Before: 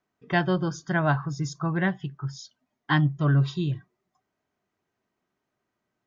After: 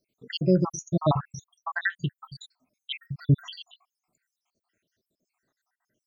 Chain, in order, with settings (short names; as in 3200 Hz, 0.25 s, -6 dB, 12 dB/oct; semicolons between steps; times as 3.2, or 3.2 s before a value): random spectral dropouts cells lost 80%; high shelf 2800 Hz +9 dB; gain +4.5 dB